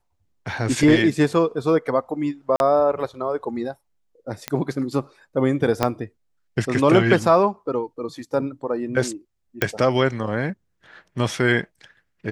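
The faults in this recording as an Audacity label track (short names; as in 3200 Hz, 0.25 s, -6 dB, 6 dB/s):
2.560000	2.600000	gap 41 ms
4.480000	4.480000	pop -8 dBFS
5.830000	5.830000	pop -5 dBFS
9.620000	9.620000	pop -5 dBFS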